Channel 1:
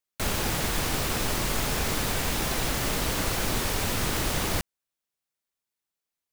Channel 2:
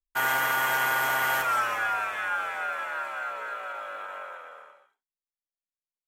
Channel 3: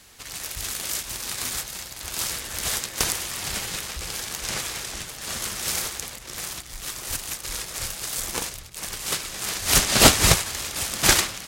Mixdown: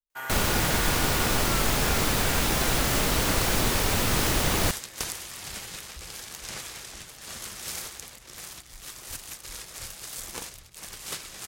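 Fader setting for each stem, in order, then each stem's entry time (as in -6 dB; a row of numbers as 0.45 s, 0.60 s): +3.0 dB, -10.5 dB, -8.5 dB; 0.10 s, 0.00 s, 2.00 s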